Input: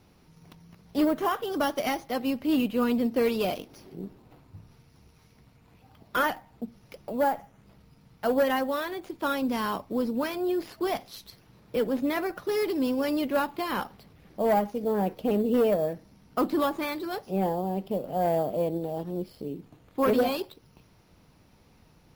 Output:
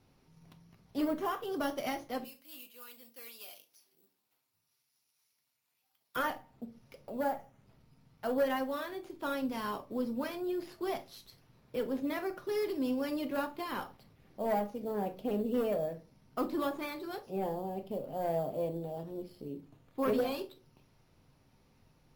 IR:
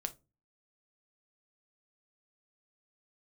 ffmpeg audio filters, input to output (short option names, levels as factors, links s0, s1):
-filter_complex "[0:a]asettb=1/sr,asplit=3[s0][s1][s2];[s0]atrim=end=2.244[s3];[s1]atrim=start=2.24:end=6.16,asetpts=PTS-STARTPTS,afade=t=in:d=0.004:c=qsin,afade=t=out:st=3.916:d=0.004:c=qsin,aderivative[s4];[s2]atrim=start=6.156[s5];[s3][s4]acrossfade=d=0.004:c1=hsin:c2=qsin[s6];[s6][s5]acrossfade=d=0.004:c1=qsin:c2=hsin[s7];[1:a]atrim=start_sample=2205,asetrate=37044,aresample=44100[s8];[s7][s8]afir=irnorm=-1:irlink=0,volume=0.398"